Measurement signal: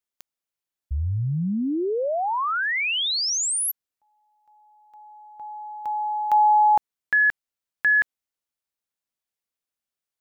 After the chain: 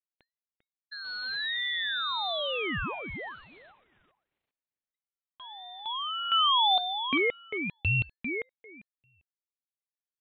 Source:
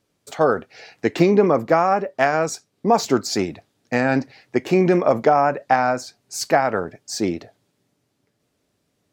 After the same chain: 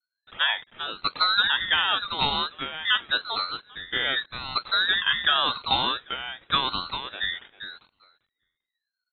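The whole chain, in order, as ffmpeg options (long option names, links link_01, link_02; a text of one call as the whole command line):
ffmpeg -i in.wav -filter_complex "[0:a]acrossover=split=150[link_01][link_02];[link_01]asoftclip=type=tanh:threshold=-32dB[link_03];[link_02]acrusher=bits=6:mix=0:aa=0.000001[link_04];[link_03][link_04]amix=inputs=2:normalize=0,lowpass=frequency=2600:width_type=q:width=0.5098,lowpass=frequency=2600:width_type=q:width=0.6013,lowpass=frequency=2600:width_type=q:width=0.9,lowpass=frequency=2600:width_type=q:width=2.563,afreqshift=-3000,asplit=2[link_05][link_06];[link_06]adelay=397,lowpass=frequency=1800:poles=1,volume=-5dB,asplit=2[link_07][link_08];[link_08]adelay=397,lowpass=frequency=1800:poles=1,volume=0.17,asplit=2[link_09][link_10];[link_10]adelay=397,lowpass=frequency=1800:poles=1,volume=0.17[link_11];[link_05][link_07][link_09][link_11]amix=inputs=4:normalize=0,aeval=exprs='val(0)*sin(2*PI*1100*n/s+1100*0.3/0.88*sin(2*PI*0.88*n/s))':channel_layout=same,volume=-4dB" out.wav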